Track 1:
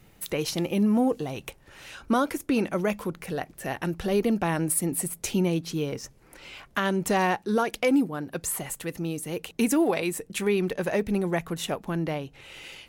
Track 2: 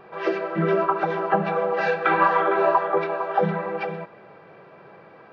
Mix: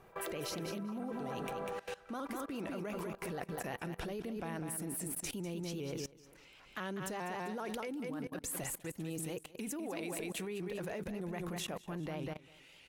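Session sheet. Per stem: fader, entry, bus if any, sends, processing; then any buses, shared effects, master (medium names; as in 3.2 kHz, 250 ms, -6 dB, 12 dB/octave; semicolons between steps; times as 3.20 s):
-3.5 dB, 0.00 s, no send, echo send -8 dB, vibrato with a chosen wave saw up 5 Hz, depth 100 cents
1.38 s -7 dB -> 1.97 s -15.5 dB, 0.00 s, no send, echo send -6.5 dB, compression 6:1, threshold -27 dBFS, peak gain reduction 12.5 dB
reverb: none
echo: feedback delay 197 ms, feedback 31%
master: level held to a coarse grid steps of 20 dB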